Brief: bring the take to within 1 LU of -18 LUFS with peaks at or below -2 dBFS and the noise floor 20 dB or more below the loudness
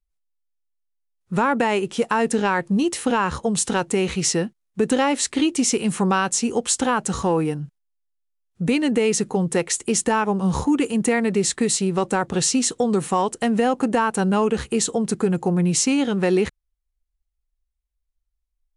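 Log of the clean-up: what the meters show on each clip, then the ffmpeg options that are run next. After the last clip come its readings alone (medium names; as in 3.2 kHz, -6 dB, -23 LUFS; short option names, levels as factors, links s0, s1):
loudness -21.0 LUFS; peak level -8.0 dBFS; loudness target -18.0 LUFS
-> -af "volume=1.41"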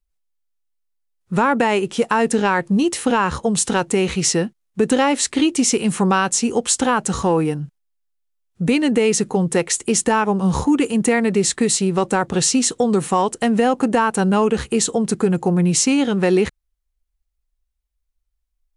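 loudness -18.0 LUFS; peak level -5.0 dBFS; noise floor -74 dBFS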